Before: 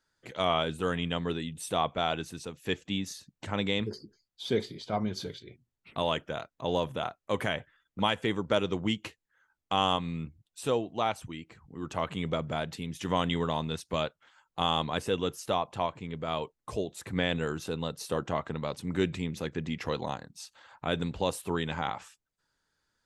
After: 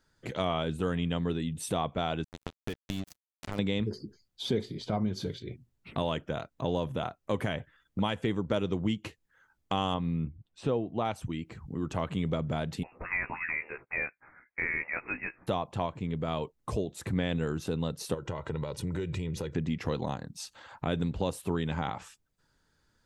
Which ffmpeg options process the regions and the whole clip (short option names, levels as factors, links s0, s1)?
-filter_complex "[0:a]asettb=1/sr,asplit=3[s0][s1][s2];[s0]atrim=end=2.244[s3];[s1]atrim=start=2.24:end=3.59,asetpts=PTS-STARTPTS,afade=t=in:d=0.004:c=qsin,afade=t=out:st=1.346:d=0.004:c=qsin,bandreject=f=60:t=h:w=6,bandreject=f=120:t=h:w=6,bandreject=f=180:t=h:w=6,bandreject=f=240:t=h:w=6,acrusher=bits=4:mix=0:aa=0.5,acompressor=threshold=0.0141:ratio=5:attack=3.2:release=140:knee=1:detection=peak[s4];[s2]atrim=start=3.586[s5];[s3][s4]acrossfade=d=0.004:c1=hsin:c2=qsin[s6];[s6][s5]acrossfade=d=0.004:c1=qsin:c2=hsin,asettb=1/sr,asplit=3[s7][s8][s9];[s7]atrim=end=9.944[s10];[s8]atrim=start=9.94:end=11.05,asetpts=PTS-STARTPTS,afade=t=in:d=0.004:c=qsin,afade=t=out:st=1.106:d=0.004:c=qsin,lowpass=6200,aemphasis=mode=reproduction:type=75fm[s11];[s9]atrim=start=11.046[s12];[s10][s11]acrossfade=d=0.004:c1=hsin:c2=qsin[s13];[s13][s12]acrossfade=d=0.004:c1=qsin:c2=hsin,asettb=1/sr,asplit=3[s14][s15][s16];[s14]atrim=end=12.834[s17];[s15]atrim=start=12.83:end=15.47,asetpts=PTS-STARTPTS,afade=t=in:d=0.004:c=qsin,afade=t=out:st=2.636:d=0.004:c=qsin,highpass=f=610:w=0.5412,highpass=f=610:w=1.3066,lowpass=f=2600:t=q:w=0.5098,lowpass=f=2600:t=q:w=0.6013,lowpass=f=2600:t=q:w=0.9,lowpass=f=2600:t=q:w=2.563,afreqshift=-3000,asplit=2[s18][s19];[s19]adelay=16,volume=0.562[s20];[s18][s20]amix=inputs=2:normalize=0,atrim=end_sample=116424[s21];[s16]atrim=start=15.466[s22];[s17][s21]acrossfade=d=0.004:c1=hsin:c2=qsin[s23];[s23][s22]acrossfade=d=0.004:c1=qsin:c2=hsin,asettb=1/sr,asplit=3[s24][s25][s26];[s24]atrim=end=18.144[s27];[s25]atrim=start=18.14:end=19.55,asetpts=PTS-STARTPTS,afade=t=in:d=0.004:c=qsin,afade=t=out:st=1.406:d=0.004:c=qsin,aecho=1:1:2.1:0.63,atrim=end_sample=62181,acompressor=threshold=0.0158:ratio=4:attack=3.2:release=140:knee=1:detection=peak[s28];[s26]atrim=start=19.546[s29];[s27][s28]acrossfade=d=0.004:c1=hsin:c2=qsin[s30];[s30][s29]acrossfade=d=0.004:c1=qsin:c2=hsin,lowshelf=f=410:g=9.5,acompressor=threshold=0.0141:ratio=2,volume=1.5"